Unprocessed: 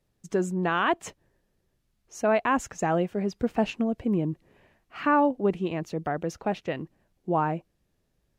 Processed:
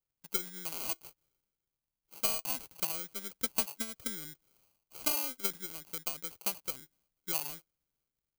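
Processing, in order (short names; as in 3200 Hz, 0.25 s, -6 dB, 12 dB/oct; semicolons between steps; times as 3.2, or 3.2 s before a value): transient shaper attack +11 dB, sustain +7 dB; sample-rate reducer 1800 Hz, jitter 0%; pre-emphasis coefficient 0.9; gain -5 dB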